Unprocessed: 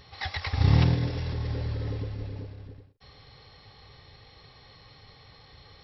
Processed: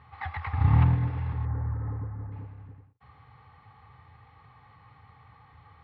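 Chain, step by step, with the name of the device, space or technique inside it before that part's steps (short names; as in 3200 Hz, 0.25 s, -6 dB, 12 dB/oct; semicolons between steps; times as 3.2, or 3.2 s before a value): 1.45–2.32 steep low-pass 1800 Hz 36 dB/oct; bass cabinet (speaker cabinet 75–2400 Hz, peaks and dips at 79 Hz +8 dB, 120 Hz +5 dB, 380 Hz -9 dB, 570 Hz -9 dB, 860 Hz +8 dB, 1200 Hz +8 dB); gain -3.5 dB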